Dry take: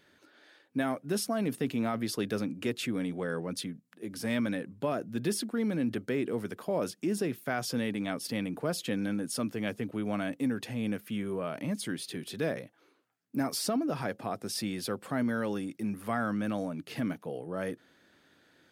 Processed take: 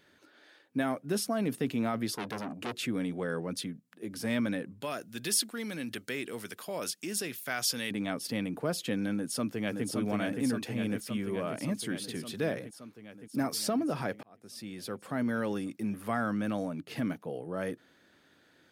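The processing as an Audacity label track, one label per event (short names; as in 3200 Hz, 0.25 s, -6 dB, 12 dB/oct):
2.140000	2.770000	core saturation saturates under 1600 Hz
4.820000	7.910000	tilt shelf lows -9 dB, about 1400 Hz
9.150000	9.850000	echo throw 0.57 s, feedback 75%, level -3.5 dB
14.230000	15.370000	fade in
16.800000	17.450000	mismatched tape noise reduction decoder only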